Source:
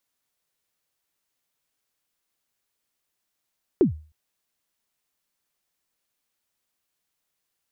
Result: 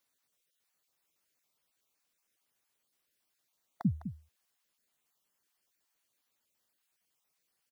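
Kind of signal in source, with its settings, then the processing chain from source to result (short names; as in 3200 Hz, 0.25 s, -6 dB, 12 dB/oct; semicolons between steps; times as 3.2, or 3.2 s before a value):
kick drum length 0.31 s, from 420 Hz, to 77 Hz, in 0.117 s, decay 0.37 s, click off, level -10.5 dB
random spectral dropouts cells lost 25%; low shelf 87 Hz -8 dB; on a send: echo 0.205 s -11 dB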